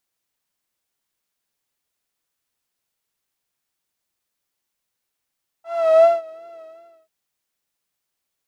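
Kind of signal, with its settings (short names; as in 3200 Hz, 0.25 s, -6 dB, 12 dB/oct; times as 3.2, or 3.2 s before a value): synth patch with vibrato E5, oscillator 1 saw, interval +12 st, sub -28.5 dB, noise -12 dB, filter bandpass, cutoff 440 Hz, Q 3.5, filter envelope 1 oct, filter decay 0.74 s, filter sustain 10%, attack 0.393 s, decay 0.18 s, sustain -22 dB, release 0.50 s, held 0.94 s, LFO 2.7 Hz, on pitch 51 cents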